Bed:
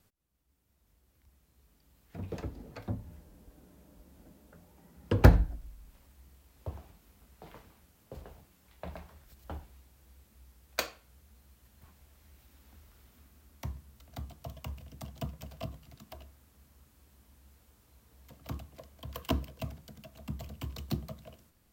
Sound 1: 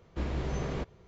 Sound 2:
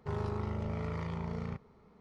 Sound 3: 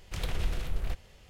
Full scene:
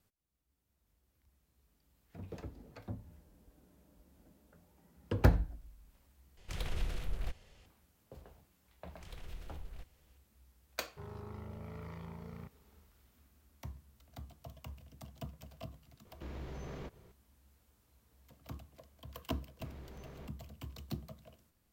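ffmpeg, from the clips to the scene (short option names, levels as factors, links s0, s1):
-filter_complex "[3:a]asplit=2[s0][s1];[1:a]asplit=2[s2][s3];[0:a]volume=0.447[s4];[2:a]alimiter=level_in=1.41:limit=0.0631:level=0:latency=1:release=395,volume=0.708[s5];[s2]alimiter=level_in=2.99:limit=0.0631:level=0:latency=1:release=85,volume=0.335[s6];[s3]asoftclip=type=tanh:threshold=0.0473[s7];[s4]asplit=2[s8][s9];[s8]atrim=end=6.374[s10];[s0]atrim=end=1.29,asetpts=PTS-STARTPTS,volume=0.531[s11];[s9]atrim=start=7.656[s12];[s1]atrim=end=1.29,asetpts=PTS-STARTPTS,volume=0.15,afade=t=in:d=0.004:c=hsin,afade=t=out:st=1.286:d=0.004:c=hsin,adelay=8890[s13];[s5]atrim=end=2,asetpts=PTS-STARTPTS,volume=0.355,afade=t=in:d=0.1,afade=t=out:st=1.9:d=0.1,adelay=10910[s14];[s6]atrim=end=1.07,asetpts=PTS-STARTPTS,volume=0.668,afade=t=in:d=0.004:c=hsin,afade=t=out:st=1.066:d=0.004:c=hsin,adelay=16050[s15];[s7]atrim=end=1.07,asetpts=PTS-STARTPTS,volume=0.158,afade=t=in:d=0.004:c=hsin,afade=t=out:st=1.066:d=0.004:c=hsin,adelay=19440[s16];[s10][s11]acrossfade=d=0.004:c1=hsin:c2=hsin[s17];[s17][s12]acrossfade=d=0.004:c1=hsin:c2=hsin[s18];[s18][s13][s14][s15][s16]amix=inputs=5:normalize=0"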